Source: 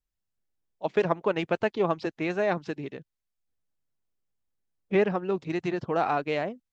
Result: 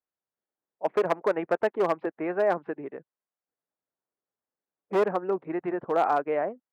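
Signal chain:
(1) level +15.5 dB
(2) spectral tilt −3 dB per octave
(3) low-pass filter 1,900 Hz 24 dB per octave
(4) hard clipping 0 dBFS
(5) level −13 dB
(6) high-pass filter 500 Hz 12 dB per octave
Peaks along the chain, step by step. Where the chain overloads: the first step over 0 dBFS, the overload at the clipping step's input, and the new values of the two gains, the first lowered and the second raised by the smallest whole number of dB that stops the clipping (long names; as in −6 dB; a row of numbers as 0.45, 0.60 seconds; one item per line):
+6.0, +7.5, +7.5, 0.0, −13.0, −11.0 dBFS
step 1, 7.5 dB
step 1 +7.5 dB, step 5 −5 dB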